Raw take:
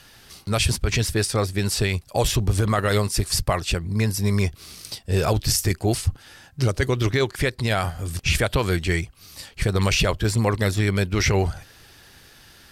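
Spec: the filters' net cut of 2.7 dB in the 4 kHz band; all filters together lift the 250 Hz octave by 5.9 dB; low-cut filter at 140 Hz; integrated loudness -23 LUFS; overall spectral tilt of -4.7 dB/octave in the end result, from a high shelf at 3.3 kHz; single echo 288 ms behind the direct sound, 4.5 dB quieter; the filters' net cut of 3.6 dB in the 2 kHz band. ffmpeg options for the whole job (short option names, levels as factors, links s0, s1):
-af "highpass=140,equalizer=f=250:t=o:g=9,equalizer=f=2000:t=o:g=-4.5,highshelf=f=3300:g=5,equalizer=f=4000:t=o:g=-6.5,aecho=1:1:288:0.596,volume=0.794"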